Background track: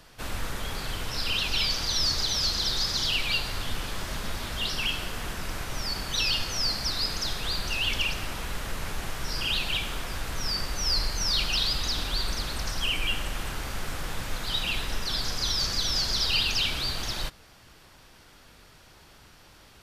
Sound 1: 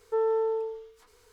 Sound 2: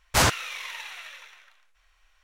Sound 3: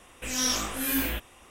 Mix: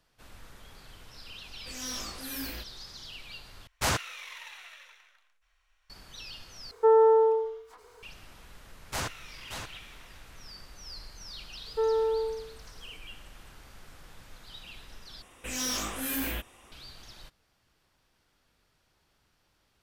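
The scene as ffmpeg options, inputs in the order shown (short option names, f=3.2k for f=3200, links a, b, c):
-filter_complex "[3:a]asplit=2[a][b];[2:a]asplit=2[c][d];[1:a]asplit=2[e][f];[0:a]volume=-18dB[g];[a]volume=21.5dB,asoftclip=hard,volume=-21.5dB[h];[e]equalizer=f=800:t=o:w=2.1:g=11[i];[d]aecho=1:1:579:0.422[j];[f]acontrast=66[k];[b]asoftclip=type=hard:threshold=-25.5dB[l];[g]asplit=4[m][n][o][p];[m]atrim=end=3.674[q];[c]atrim=end=2.23,asetpts=PTS-STARTPTS,volume=-7.5dB[r];[n]atrim=start=5.896:end=6.714[s];[i]atrim=end=1.32,asetpts=PTS-STARTPTS,volume=-0.5dB[t];[o]atrim=start=8.026:end=15.224[u];[l]atrim=end=1.5,asetpts=PTS-STARTPTS,volume=-2.5dB[v];[p]atrim=start=16.716[w];[h]atrim=end=1.5,asetpts=PTS-STARTPTS,volume=-10dB,afade=t=in:d=0.004:c=hsin,afade=t=out:st=1.496:d=0.004:c=hsin,adelay=1440[x];[j]atrim=end=2.23,asetpts=PTS-STARTPTS,volume=-13.5dB,afade=t=in:d=0.004:c=hsin,afade=t=out:st=2.226:d=0.004:c=hsin,adelay=8780[y];[k]atrim=end=1.32,asetpts=PTS-STARTPTS,volume=-7dB,afade=t=in:d=0.004:c=hsin,afade=t=out:st=1.316:d=0.004:c=hsin,adelay=11650[z];[q][r]acrossfade=d=0.004:c1=hsin:c2=hsin[aa];[aa][s]acrossfade=d=0.004:c1=hsin:c2=hsin[ab];[ab][t]acrossfade=d=0.004:c1=hsin:c2=hsin[ac];[ac][u]acrossfade=d=0.004:c1=hsin:c2=hsin[ad];[ad][v]acrossfade=d=0.004:c1=hsin:c2=hsin[ae];[ae][w]acrossfade=d=0.004:c1=hsin:c2=hsin[af];[af][x][y][z]amix=inputs=4:normalize=0"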